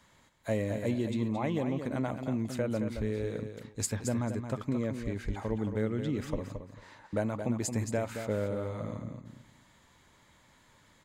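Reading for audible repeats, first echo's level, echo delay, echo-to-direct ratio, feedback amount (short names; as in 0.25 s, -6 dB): 2, -8.0 dB, 0.222 s, -8.0 dB, 19%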